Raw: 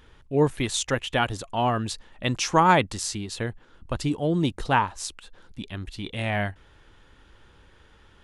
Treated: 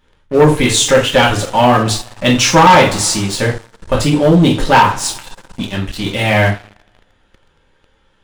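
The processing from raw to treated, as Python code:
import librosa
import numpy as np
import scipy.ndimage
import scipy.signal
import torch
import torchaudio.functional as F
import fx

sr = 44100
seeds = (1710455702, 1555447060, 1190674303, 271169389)

y = fx.rev_double_slope(x, sr, seeds[0], early_s=0.34, late_s=2.1, knee_db=-26, drr_db=-4.5)
y = fx.leveller(y, sr, passes=3)
y = F.gain(torch.from_numpy(y), -1.0).numpy()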